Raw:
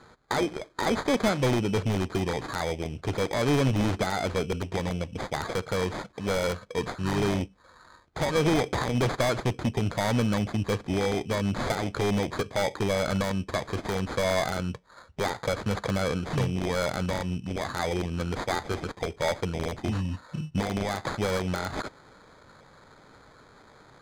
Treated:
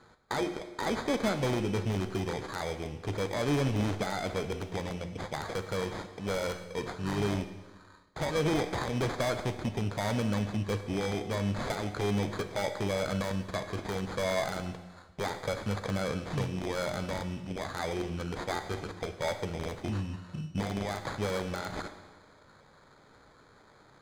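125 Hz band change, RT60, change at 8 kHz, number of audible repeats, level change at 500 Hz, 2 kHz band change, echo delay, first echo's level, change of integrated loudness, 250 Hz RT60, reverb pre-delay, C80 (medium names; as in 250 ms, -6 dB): -4.5 dB, 1.2 s, -5.0 dB, no echo, -4.5 dB, -5.0 dB, no echo, no echo, -4.5 dB, 1.3 s, 11 ms, 11.5 dB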